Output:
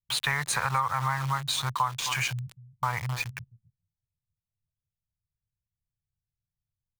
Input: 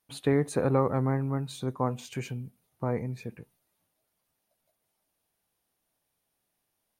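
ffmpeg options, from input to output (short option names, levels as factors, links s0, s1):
-filter_complex "[0:a]firequalizer=gain_entry='entry(120,0);entry(270,-29);entry(940,14)':delay=0.05:min_phase=1,aecho=1:1:261:0.141,asplit=2[s0][s1];[s1]alimiter=level_in=1.06:limit=0.0631:level=0:latency=1:release=91,volume=0.944,volume=0.794[s2];[s0][s2]amix=inputs=2:normalize=0,adynamicsmooth=sensitivity=4.5:basefreq=4600,acrossover=split=240[s3][s4];[s4]aeval=exprs='val(0)*gte(abs(val(0)),0.0224)':c=same[s5];[s3][s5]amix=inputs=2:normalize=0,acompressor=threshold=0.0708:ratio=6"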